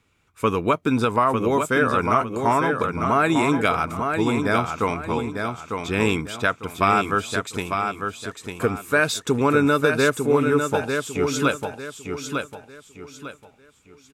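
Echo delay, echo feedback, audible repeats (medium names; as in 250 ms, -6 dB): 900 ms, 32%, 3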